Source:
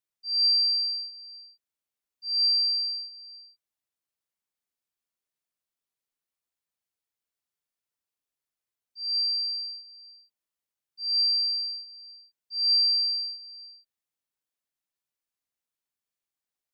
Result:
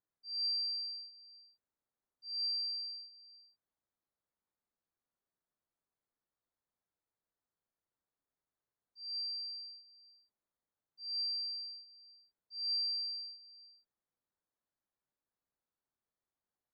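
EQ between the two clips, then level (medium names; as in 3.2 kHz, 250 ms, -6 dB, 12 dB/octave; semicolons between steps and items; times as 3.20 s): boxcar filter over 16 samples; +3.5 dB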